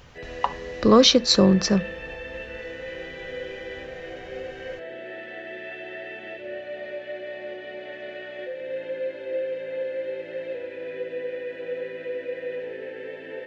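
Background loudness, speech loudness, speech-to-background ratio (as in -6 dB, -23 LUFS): -34.5 LUFS, -19.0 LUFS, 15.5 dB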